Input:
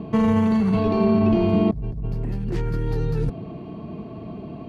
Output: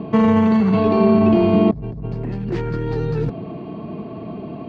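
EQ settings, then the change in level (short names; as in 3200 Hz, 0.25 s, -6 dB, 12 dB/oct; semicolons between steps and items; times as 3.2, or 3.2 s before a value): HPF 180 Hz 6 dB/oct; air absorption 120 m; +6.5 dB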